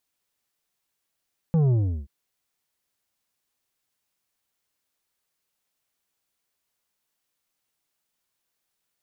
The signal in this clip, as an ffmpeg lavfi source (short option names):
-f lavfi -i "aevalsrc='0.126*clip((0.53-t)/0.36,0,1)*tanh(2.51*sin(2*PI*170*0.53/log(65/170)*(exp(log(65/170)*t/0.53)-1)))/tanh(2.51)':d=0.53:s=44100"